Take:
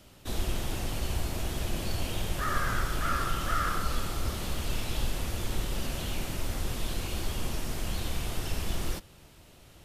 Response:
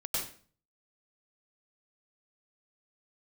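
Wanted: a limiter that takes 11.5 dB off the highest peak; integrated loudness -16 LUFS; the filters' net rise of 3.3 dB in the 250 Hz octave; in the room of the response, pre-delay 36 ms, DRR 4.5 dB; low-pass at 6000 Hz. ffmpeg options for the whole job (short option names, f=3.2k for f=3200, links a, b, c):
-filter_complex "[0:a]lowpass=6k,equalizer=f=250:t=o:g=4.5,alimiter=level_in=0.5dB:limit=-24dB:level=0:latency=1,volume=-0.5dB,asplit=2[a][b];[1:a]atrim=start_sample=2205,adelay=36[c];[b][c]afir=irnorm=-1:irlink=0,volume=-9dB[d];[a][d]amix=inputs=2:normalize=0,volume=18.5dB"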